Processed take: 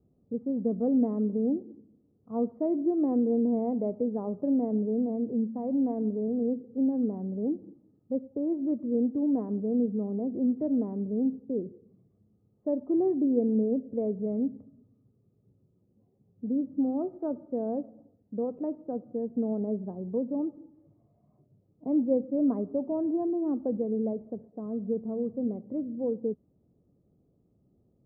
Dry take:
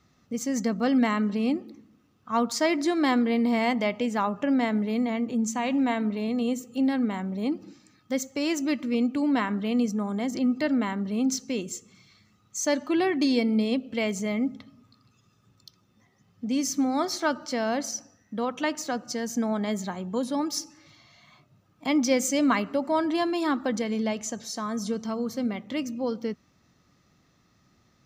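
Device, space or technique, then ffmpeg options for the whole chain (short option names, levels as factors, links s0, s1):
under water: -af "lowpass=f=590:w=0.5412,lowpass=f=590:w=1.3066,equalizer=f=430:t=o:w=0.4:g=5.5,volume=0.75"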